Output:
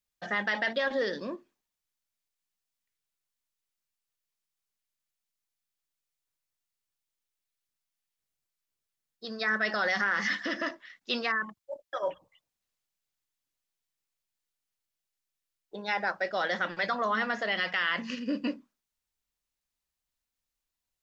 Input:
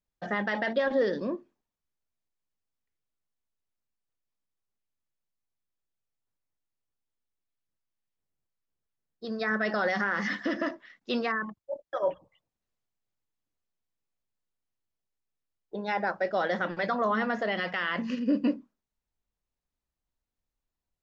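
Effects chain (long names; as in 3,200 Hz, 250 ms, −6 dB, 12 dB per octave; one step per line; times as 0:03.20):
tilt shelving filter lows −6.5 dB, about 1,200 Hz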